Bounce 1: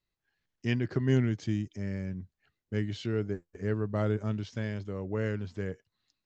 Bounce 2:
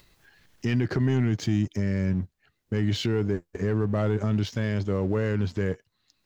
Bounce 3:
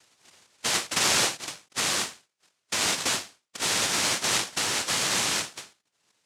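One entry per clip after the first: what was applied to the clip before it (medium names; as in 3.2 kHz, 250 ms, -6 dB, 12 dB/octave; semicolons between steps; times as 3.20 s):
waveshaping leveller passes 1; peak limiter -25 dBFS, peak gain reduction 10.5 dB; upward compressor, threshold -52 dBFS; trim +8.5 dB
recorder AGC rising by 7.4 dB/s; noise-vocoded speech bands 1; endings held to a fixed fall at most 180 dB/s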